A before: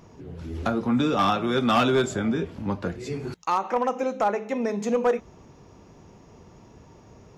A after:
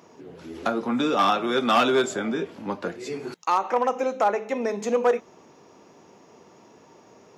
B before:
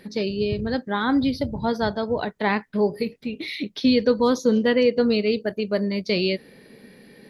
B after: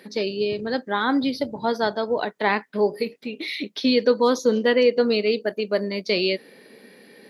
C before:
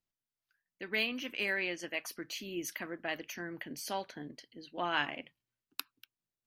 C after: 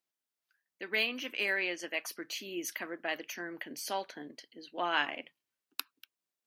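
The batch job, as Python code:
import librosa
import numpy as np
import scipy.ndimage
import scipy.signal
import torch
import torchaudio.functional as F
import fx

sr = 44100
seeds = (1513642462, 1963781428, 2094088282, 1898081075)

y = scipy.signal.sosfilt(scipy.signal.butter(2, 290.0, 'highpass', fs=sr, output='sos'), x)
y = F.gain(torch.from_numpy(y), 2.0).numpy()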